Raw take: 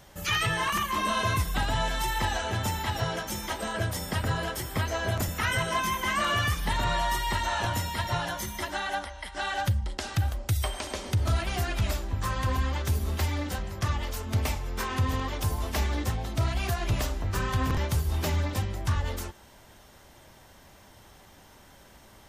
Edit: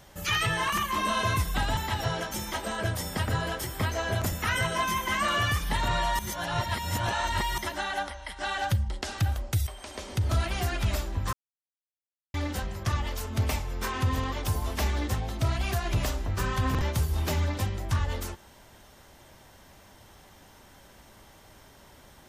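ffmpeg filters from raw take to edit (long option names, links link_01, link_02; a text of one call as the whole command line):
ffmpeg -i in.wav -filter_complex "[0:a]asplit=7[link_01][link_02][link_03][link_04][link_05][link_06][link_07];[link_01]atrim=end=1.772[link_08];[link_02]atrim=start=2.728:end=7.152[link_09];[link_03]atrim=start=7.148:end=8.542,asetpts=PTS-STARTPTS,areverse[link_10];[link_04]atrim=start=8.538:end=10.63,asetpts=PTS-STARTPTS,afade=type=out:start_time=2.088:duration=0.004:curve=hsin:silence=0.223872[link_11];[link_05]atrim=start=10.63:end=12.29,asetpts=PTS-STARTPTS,afade=type=in:duration=0.65:silence=0.223872,afade=type=out:start_time=1.656:duration=0.004:curve=hsin[link_12];[link_06]atrim=start=12.29:end=13.3,asetpts=PTS-STARTPTS,volume=0[link_13];[link_07]atrim=start=13.3,asetpts=PTS-STARTPTS,afade=type=in:duration=0.004:curve=hsin[link_14];[link_08][link_09]acrossfade=duration=0.004:curve1=hsin:curve2=hsin[link_15];[link_15][link_10]acrossfade=duration=0.004:curve1=hsin:curve2=hsin[link_16];[link_11][link_12][link_13][link_14]concat=n=4:v=0:a=1[link_17];[link_16][link_17]acrossfade=duration=0.004:curve1=hsin:curve2=hsin" out.wav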